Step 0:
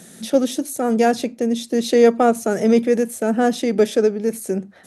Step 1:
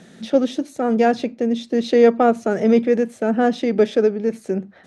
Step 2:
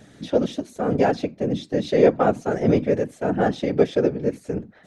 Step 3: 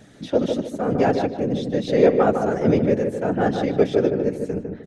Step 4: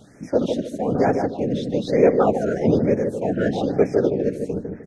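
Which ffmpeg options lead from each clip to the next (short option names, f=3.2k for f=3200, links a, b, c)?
-af "lowpass=3.8k"
-af "afftfilt=real='hypot(re,im)*cos(2*PI*random(0))':imag='hypot(re,im)*sin(2*PI*random(1))':win_size=512:overlap=0.75,volume=2.5dB"
-filter_complex "[0:a]asplit=2[a][b];[b]adelay=152,lowpass=f=1.5k:p=1,volume=-4.5dB,asplit=2[c][d];[d]adelay=152,lowpass=f=1.5k:p=1,volume=0.34,asplit=2[e][f];[f]adelay=152,lowpass=f=1.5k:p=1,volume=0.34,asplit=2[g][h];[h]adelay=152,lowpass=f=1.5k:p=1,volume=0.34[i];[a][c][e][g][i]amix=inputs=5:normalize=0"
-af "afftfilt=real='re*(1-between(b*sr/1024,940*pow(3700/940,0.5+0.5*sin(2*PI*1.1*pts/sr))/1.41,940*pow(3700/940,0.5+0.5*sin(2*PI*1.1*pts/sr))*1.41))':imag='im*(1-between(b*sr/1024,940*pow(3700/940,0.5+0.5*sin(2*PI*1.1*pts/sr))/1.41,940*pow(3700/940,0.5+0.5*sin(2*PI*1.1*pts/sr))*1.41))':win_size=1024:overlap=0.75"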